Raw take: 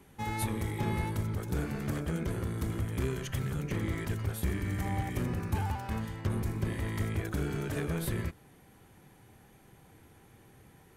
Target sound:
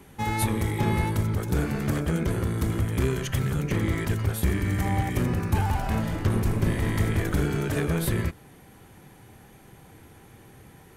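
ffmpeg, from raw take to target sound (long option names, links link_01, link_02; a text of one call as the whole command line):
ffmpeg -i in.wav -filter_complex "[0:a]asettb=1/sr,asplit=3[link_01][link_02][link_03];[link_01]atrim=end=5.364[link_04];[link_02]atrim=start=5.36:end=7.46,asetpts=PTS-STARTPTS,afade=type=in:duration=0.004:curve=qsin,afade=type=out:start_time=2.096:duration=0.004:curve=qsin,asplit=9[link_05][link_06][link_07][link_08][link_09][link_10][link_11][link_12][link_13];[link_06]adelay=206,afreqshift=-130,volume=-8dB[link_14];[link_07]adelay=412,afreqshift=-260,volume=-12.2dB[link_15];[link_08]adelay=618,afreqshift=-390,volume=-16.3dB[link_16];[link_09]adelay=824,afreqshift=-520,volume=-20.5dB[link_17];[link_10]adelay=1030,afreqshift=-650,volume=-24.6dB[link_18];[link_11]adelay=1236,afreqshift=-780,volume=-28.8dB[link_19];[link_12]adelay=1442,afreqshift=-910,volume=-32.9dB[link_20];[link_13]adelay=1648,afreqshift=-1040,volume=-37.1dB[link_21];[link_05][link_14][link_15][link_16][link_17][link_18][link_19][link_20][link_21]amix=inputs=9:normalize=0,atrim=end_sample=92610[link_22];[link_03]atrim=start=7.456[link_23];[link_04][link_22]acrossfade=duration=0.004:curve1=hsin:curve2=qsin[link_24];[link_24][link_23]acrossfade=duration=0.004:curve1=qsin:curve2=hsin,volume=7.5dB" out.wav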